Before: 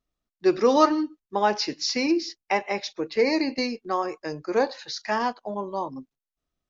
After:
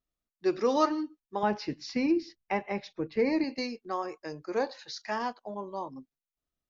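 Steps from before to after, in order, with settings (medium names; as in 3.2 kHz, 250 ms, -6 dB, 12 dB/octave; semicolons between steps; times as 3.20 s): 1.43–3.44 s: tone controls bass +13 dB, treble -12 dB; trim -7 dB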